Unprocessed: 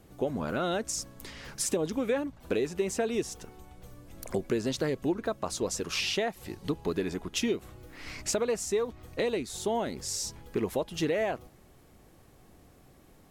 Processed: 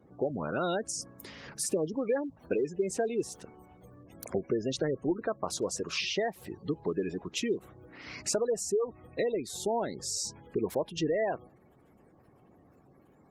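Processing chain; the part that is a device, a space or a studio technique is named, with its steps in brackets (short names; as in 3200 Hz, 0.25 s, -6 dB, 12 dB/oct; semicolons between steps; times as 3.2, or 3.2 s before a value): dynamic EQ 240 Hz, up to -4 dB, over -46 dBFS, Q 3.5; noise-suppressed video call (HPF 110 Hz 12 dB/oct; spectral gate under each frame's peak -20 dB strong; Opus 24 kbps 48000 Hz)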